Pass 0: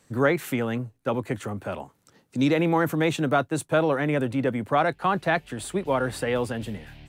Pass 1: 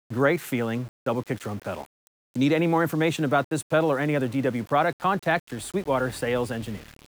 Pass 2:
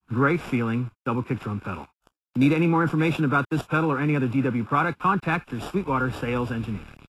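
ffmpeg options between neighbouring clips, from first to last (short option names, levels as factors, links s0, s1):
-af "aeval=exprs='val(0)*gte(abs(val(0)),0.01)':c=same"
-filter_complex "[0:a]aecho=1:1:0.8:0.76,acrossover=split=130|1700|3300[s0][s1][s2][s3];[s3]acrusher=samples=21:mix=1:aa=0.000001[s4];[s0][s1][s2][s4]amix=inputs=4:normalize=0" -ar 32000 -c:a libvorbis -b:a 32k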